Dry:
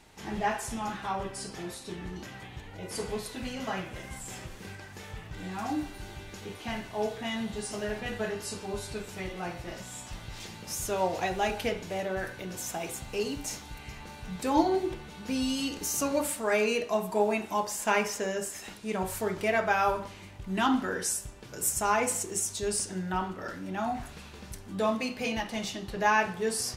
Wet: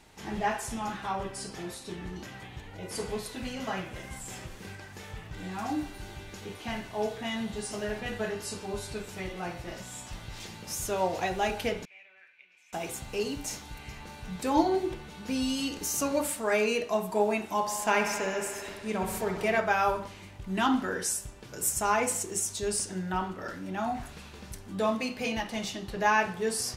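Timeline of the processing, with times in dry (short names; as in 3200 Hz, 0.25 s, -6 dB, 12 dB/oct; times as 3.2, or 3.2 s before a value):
11.85–12.73 band-pass 2400 Hz, Q 13
17.53–19.6 analogue delay 65 ms, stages 2048, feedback 83%, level -9.5 dB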